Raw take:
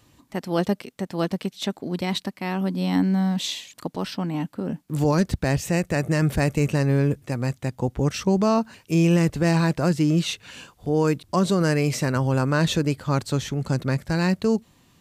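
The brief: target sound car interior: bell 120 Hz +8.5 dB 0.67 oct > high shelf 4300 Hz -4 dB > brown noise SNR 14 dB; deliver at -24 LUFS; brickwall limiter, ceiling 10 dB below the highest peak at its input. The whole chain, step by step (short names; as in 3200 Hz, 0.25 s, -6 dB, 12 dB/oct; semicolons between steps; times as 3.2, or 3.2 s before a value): limiter -21 dBFS; bell 120 Hz +8.5 dB 0.67 oct; high shelf 4300 Hz -4 dB; brown noise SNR 14 dB; gain +3.5 dB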